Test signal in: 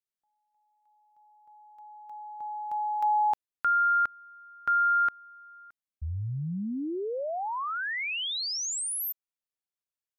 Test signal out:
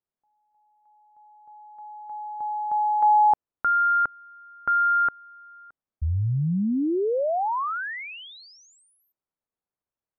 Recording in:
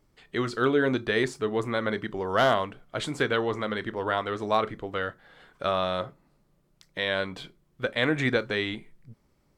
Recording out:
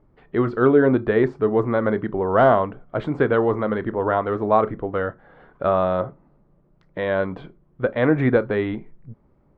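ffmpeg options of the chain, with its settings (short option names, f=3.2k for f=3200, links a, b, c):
-af "lowpass=1.1k,volume=8.5dB"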